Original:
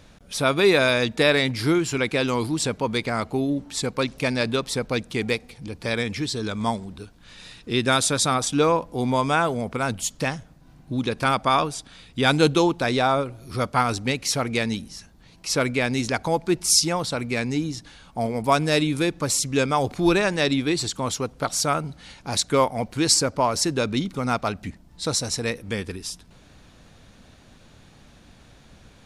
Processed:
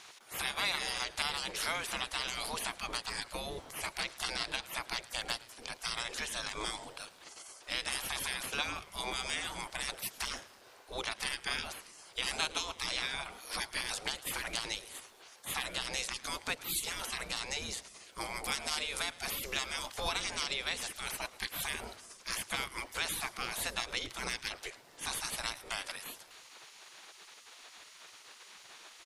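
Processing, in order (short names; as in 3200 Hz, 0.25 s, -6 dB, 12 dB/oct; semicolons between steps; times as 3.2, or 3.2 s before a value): spectral gate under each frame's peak -20 dB weak; compressor 2.5:1, threshold -41 dBFS, peak gain reduction 12.5 dB; on a send: frequency-shifting echo 0.109 s, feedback 62%, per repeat -140 Hz, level -20.5 dB; on the sum: gain +6 dB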